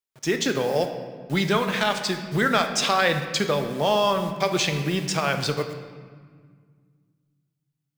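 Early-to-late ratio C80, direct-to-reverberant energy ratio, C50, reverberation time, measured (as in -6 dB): 9.5 dB, 6.0 dB, 8.0 dB, 1.7 s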